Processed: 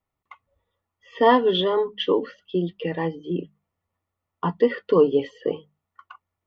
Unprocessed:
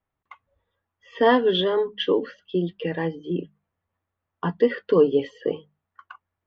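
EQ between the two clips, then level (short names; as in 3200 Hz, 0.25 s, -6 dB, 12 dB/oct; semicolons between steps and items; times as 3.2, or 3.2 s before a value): Butterworth band-stop 1600 Hz, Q 6.8; dynamic EQ 980 Hz, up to +5 dB, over -38 dBFS, Q 2.5; 0.0 dB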